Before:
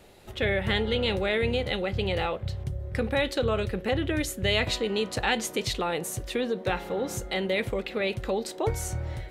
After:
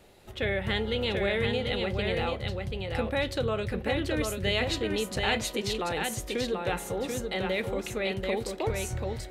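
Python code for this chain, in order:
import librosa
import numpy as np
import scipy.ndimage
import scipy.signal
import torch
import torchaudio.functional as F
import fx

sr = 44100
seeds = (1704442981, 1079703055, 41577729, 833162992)

y = x + 10.0 ** (-4.0 / 20.0) * np.pad(x, (int(736 * sr / 1000.0), 0))[:len(x)]
y = y * librosa.db_to_amplitude(-3.0)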